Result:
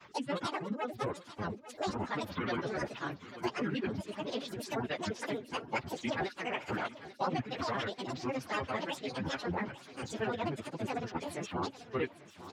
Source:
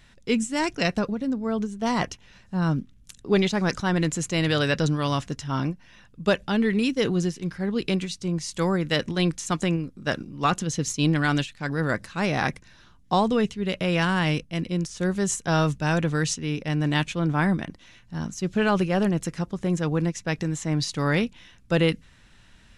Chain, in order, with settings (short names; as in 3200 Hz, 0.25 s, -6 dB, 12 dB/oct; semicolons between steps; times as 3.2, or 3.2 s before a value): HPF 320 Hz 12 dB/oct; treble ducked by the level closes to 2700 Hz, closed at -25.5 dBFS; in parallel at -1.5 dB: limiter -18 dBFS, peak gain reduction 9.5 dB; on the sum: grains, grains 20/s, spray 12 ms, pitch spread up and down by 12 st; plain phase-vocoder stretch 0.55×; on a send: feedback echo 0.844 s, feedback 49%, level -18 dB; on the sum: three-band squash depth 40%; gain -7 dB